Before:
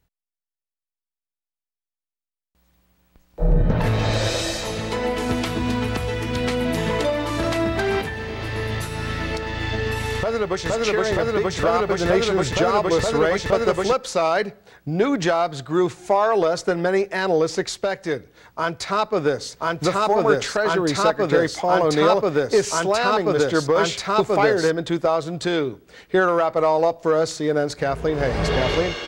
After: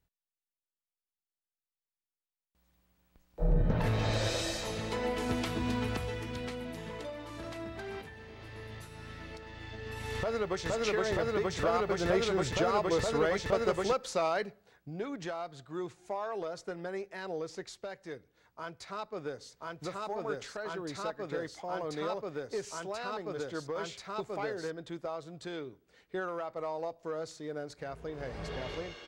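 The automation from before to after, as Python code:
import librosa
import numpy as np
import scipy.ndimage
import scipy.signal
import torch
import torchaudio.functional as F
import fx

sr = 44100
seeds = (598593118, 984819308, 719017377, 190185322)

y = fx.gain(x, sr, db=fx.line((5.92, -9.5), (6.78, -19.5), (9.79, -19.5), (10.22, -10.0), (14.23, -10.0), (15.03, -18.5)))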